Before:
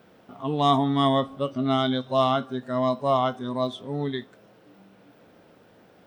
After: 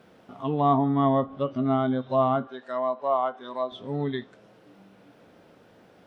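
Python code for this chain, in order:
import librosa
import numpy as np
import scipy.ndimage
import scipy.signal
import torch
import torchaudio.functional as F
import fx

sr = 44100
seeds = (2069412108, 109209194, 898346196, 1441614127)

y = fx.env_lowpass_down(x, sr, base_hz=1300.0, full_db=-20.5)
y = fx.highpass(y, sr, hz=530.0, slope=12, at=(2.47, 3.72))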